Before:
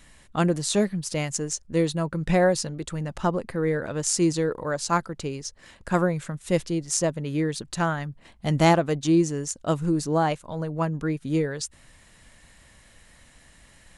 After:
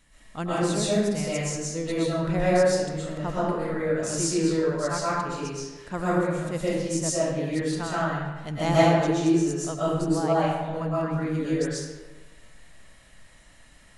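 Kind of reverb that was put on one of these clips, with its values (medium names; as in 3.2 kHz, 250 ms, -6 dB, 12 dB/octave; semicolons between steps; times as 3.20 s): algorithmic reverb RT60 1.2 s, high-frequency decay 0.7×, pre-delay 85 ms, DRR -9 dB; trim -9.5 dB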